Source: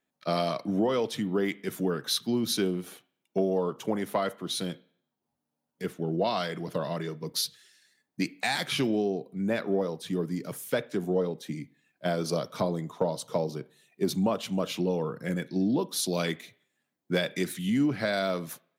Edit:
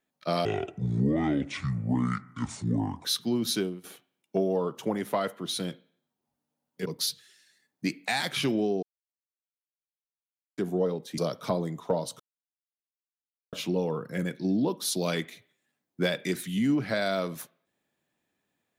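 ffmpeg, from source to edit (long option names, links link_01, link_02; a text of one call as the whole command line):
ffmpeg -i in.wav -filter_complex "[0:a]asplit=10[link_01][link_02][link_03][link_04][link_05][link_06][link_07][link_08][link_09][link_10];[link_01]atrim=end=0.454[link_11];[link_02]atrim=start=0.45:end=2.06,asetpts=PTS-STARTPTS,asetrate=27342,aresample=44100[link_12];[link_03]atrim=start=2.056:end=2.85,asetpts=PTS-STARTPTS,afade=type=out:start_time=0.514:duration=0.28:silence=0.158489[link_13];[link_04]atrim=start=2.85:end=5.872,asetpts=PTS-STARTPTS,afade=type=in:duration=0.004:curve=hsin:silence=0.158489[link_14];[link_05]atrim=start=7.208:end=9.18,asetpts=PTS-STARTPTS,afade=type=out:start_time=1.968:duration=0.004:curve=hsin[link_15];[link_06]atrim=start=9.18:end=10.93,asetpts=PTS-STARTPTS,volume=0[link_16];[link_07]atrim=start=10.93:end=11.532,asetpts=PTS-STARTPTS,afade=type=in:duration=0.004:curve=hsin[link_17];[link_08]atrim=start=12.288:end=13.31,asetpts=PTS-STARTPTS,afade=type=out:start_time=1.018:duration=0.004:curve=hsin[link_18];[link_09]atrim=start=13.31:end=14.64,asetpts=PTS-STARTPTS,volume=0[link_19];[link_10]atrim=start=14.64,asetpts=PTS-STARTPTS,afade=type=in:duration=0.004:curve=hsin[link_20];[link_11][link_12]acrossfade=duration=0.004:curve1=hsin:curve2=hsin[link_21];[link_13][link_14]concat=n=2:v=0:a=1[link_22];[link_21][link_22]acrossfade=duration=0.004:curve1=hsin:curve2=hsin[link_23];[link_15][link_16][link_17]concat=n=3:v=0:a=1[link_24];[link_23][link_24]acrossfade=duration=0.004:curve1=hsin:curve2=hsin[link_25];[link_18][link_19][link_20]concat=n=3:v=0:a=1[link_26];[link_25][link_26]acrossfade=duration=0.004:curve1=hsin:curve2=hsin" out.wav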